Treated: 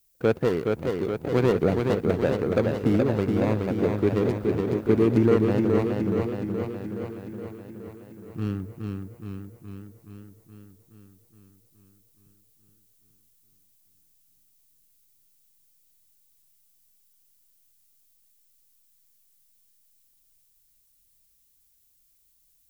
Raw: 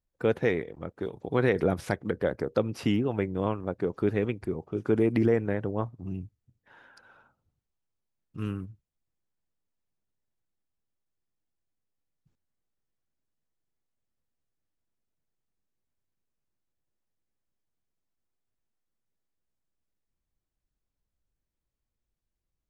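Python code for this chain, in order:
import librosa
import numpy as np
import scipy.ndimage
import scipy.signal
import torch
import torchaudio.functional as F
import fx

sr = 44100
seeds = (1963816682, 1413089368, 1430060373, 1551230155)

y = scipy.signal.medfilt(x, 41)
y = fx.dmg_noise_colour(y, sr, seeds[0], colour='violet', level_db=-70.0)
y = fx.echo_warbled(y, sr, ms=421, feedback_pct=64, rate_hz=2.8, cents=64, wet_db=-4.0)
y = F.gain(torch.from_numpy(y), 4.0).numpy()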